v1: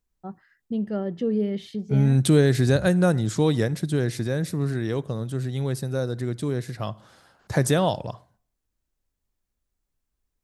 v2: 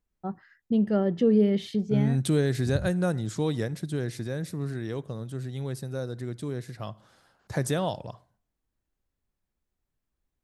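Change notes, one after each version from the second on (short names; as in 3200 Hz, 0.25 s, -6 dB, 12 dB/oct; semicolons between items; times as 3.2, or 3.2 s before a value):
first voice +3.5 dB; second voice -6.5 dB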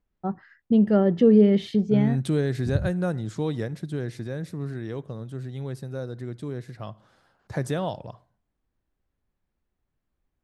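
first voice +5.0 dB; master: add high shelf 4800 Hz -9.5 dB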